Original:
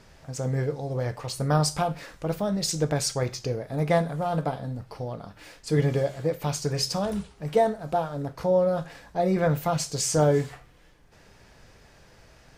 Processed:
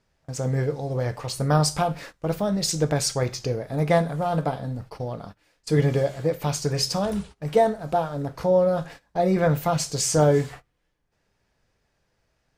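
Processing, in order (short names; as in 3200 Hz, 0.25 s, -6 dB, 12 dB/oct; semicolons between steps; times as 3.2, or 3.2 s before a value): gate -42 dBFS, range -20 dB; gain +2.5 dB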